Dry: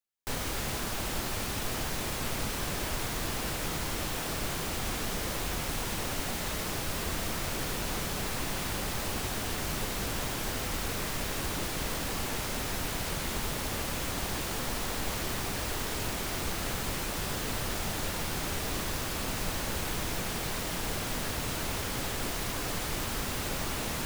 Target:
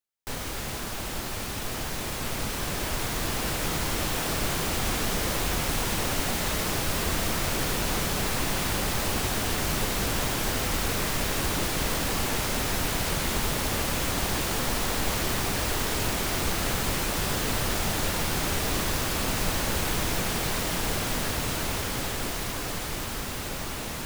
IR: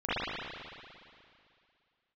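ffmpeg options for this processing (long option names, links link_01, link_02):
-af "dynaudnorm=framelen=530:gausssize=11:maxgain=6dB"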